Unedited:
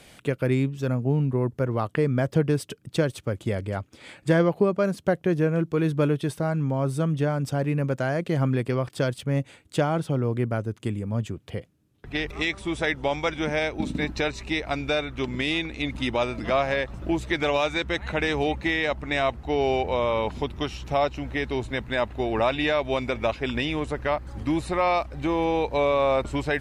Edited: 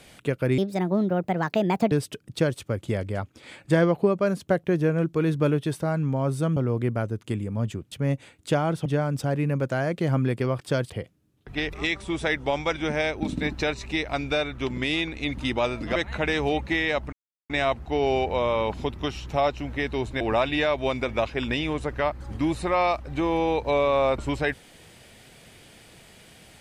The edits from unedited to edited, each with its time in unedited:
0.58–2.49 speed 143%
7.14–9.18 swap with 10.12–11.47
16.53–17.9 cut
19.07 insert silence 0.37 s
21.78–22.27 cut

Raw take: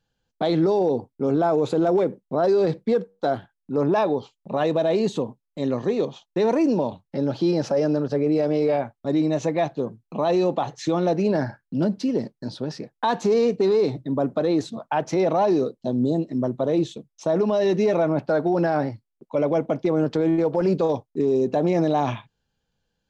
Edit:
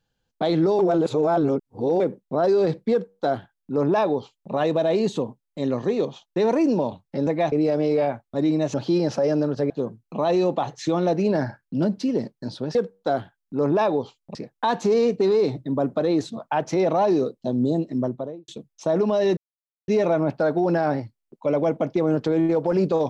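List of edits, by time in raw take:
0.79–2 reverse
2.92–4.52 copy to 12.75
7.27–8.23 swap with 9.45–9.7
16.37–16.88 studio fade out
17.77 insert silence 0.51 s

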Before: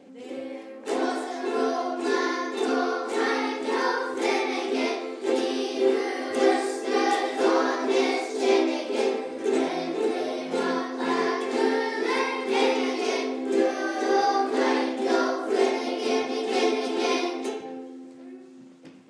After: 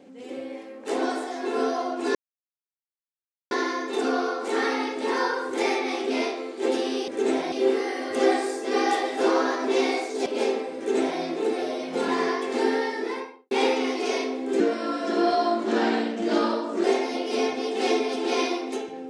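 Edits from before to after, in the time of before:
2.15 insert silence 1.36 s
8.46–8.84 cut
9.35–9.79 copy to 5.72
10.66–11.07 cut
11.82–12.5 studio fade out
13.59–15.56 speed 88%

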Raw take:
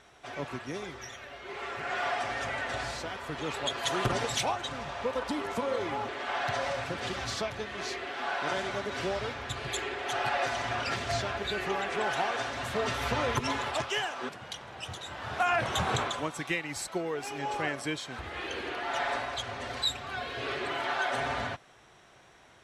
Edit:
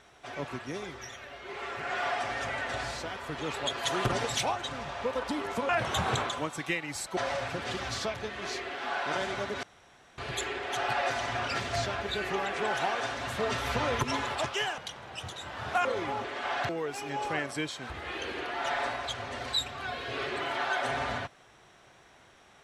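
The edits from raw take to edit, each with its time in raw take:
5.69–6.53 swap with 15.5–16.98
8.99–9.54 room tone
14.14–14.43 cut

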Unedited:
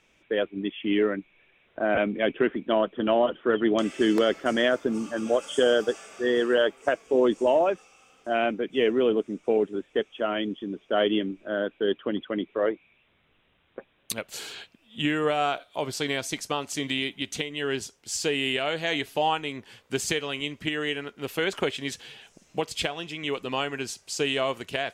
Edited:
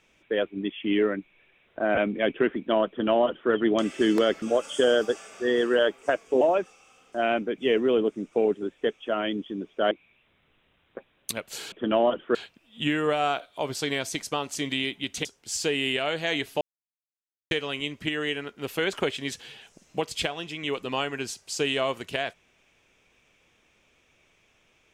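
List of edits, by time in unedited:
2.88–3.51 copy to 14.53
4.42–5.21 cut
7.2–7.53 cut
11.03–12.72 cut
17.43–17.85 cut
19.21–20.11 mute

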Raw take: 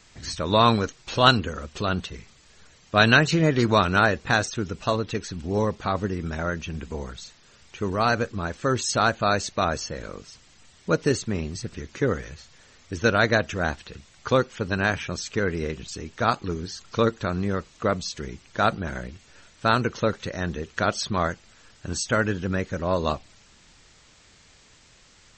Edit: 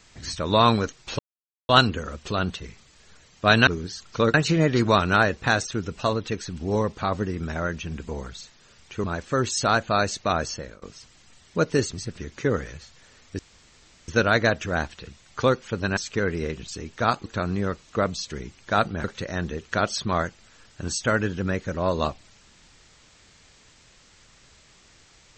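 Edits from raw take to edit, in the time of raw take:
1.19 insert silence 0.50 s
7.87–8.36 cut
9.87–10.14 fade out, to -23 dB
11.25–11.5 cut
12.96 insert room tone 0.69 s
14.85–15.17 cut
16.46–17.13 move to 3.17
18.91–20.09 cut

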